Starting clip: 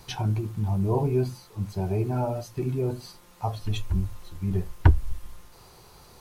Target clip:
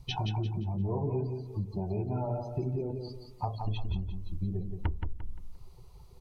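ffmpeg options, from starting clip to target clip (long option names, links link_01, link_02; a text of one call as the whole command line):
ffmpeg -i in.wav -filter_complex "[0:a]acrossover=split=4900[link_01][link_02];[link_02]acompressor=threshold=-56dB:ratio=4:attack=1:release=60[link_03];[link_01][link_03]amix=inputs=2:normalize=0,afftdn=noise_reduction=21:noise_floor=-40,equalizer=frequency=1600:width_type=o:width=0.27:gain=-14.5,acompressor=threshold=-38dB:ratio=5,aecho=1:1:174|348|522|696:0.501|0.165|0.0546|0.018,volume=6.5dB" out.wav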